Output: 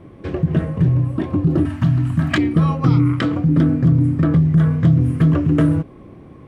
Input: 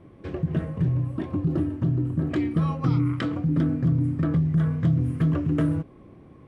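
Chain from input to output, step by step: 1.65–2.38 s: FFT filter 250 Hz 0 dB, 450 Hz -22 dB, 640 Hz +1 dB, 1.8 kHz +10 dB; trim +8 dB

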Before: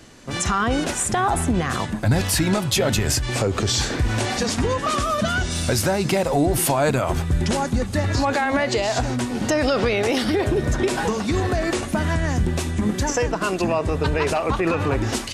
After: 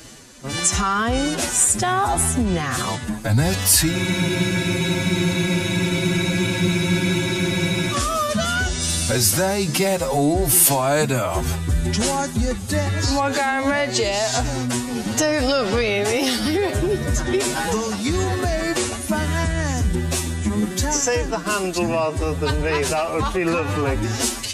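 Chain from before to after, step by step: time stretch by phase-locked vocoder 1.6×; reverse; upward compressor, threshold -37 dBFS; reverse; treble shelf 5 kHz +10.5 dB; spectral freeze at 3.95 s, 3.99 s

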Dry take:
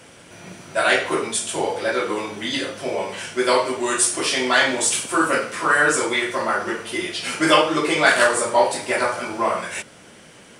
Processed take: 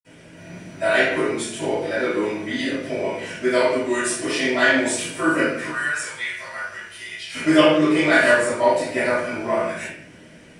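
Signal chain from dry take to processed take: 5.64–7.30 s: amplifier tone stack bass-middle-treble 10-0-10; reverberation RT60 0.60 s, pre-delay 47 ms; trim -3 dB

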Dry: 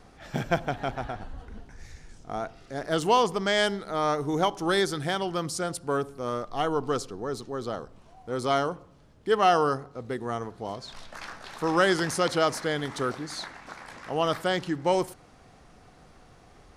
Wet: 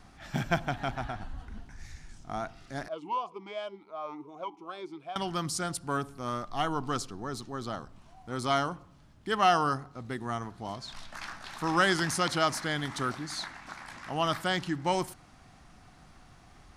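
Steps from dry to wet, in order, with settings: peaking EQ 470 Hz -12 dB 0.66 oct; 2.88–5.16 s: talking filter a-u 2.7 Hz

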